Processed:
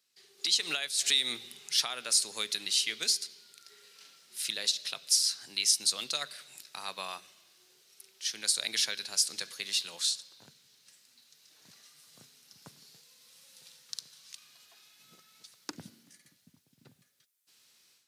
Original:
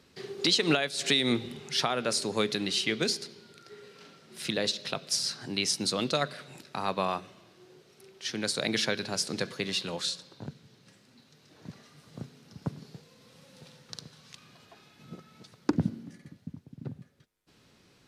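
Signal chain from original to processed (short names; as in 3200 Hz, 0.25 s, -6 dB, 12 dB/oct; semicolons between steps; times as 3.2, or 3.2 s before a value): HPF 76 Hz; pre-emphasis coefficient 0.97; AGC gain up to 13 dB; gain -6.5 dB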